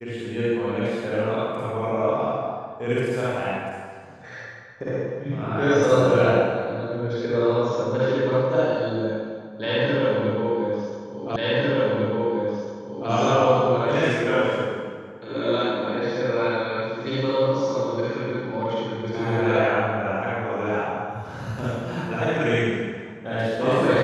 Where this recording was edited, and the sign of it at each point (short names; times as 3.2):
11.36 repeat of the last 1.75 s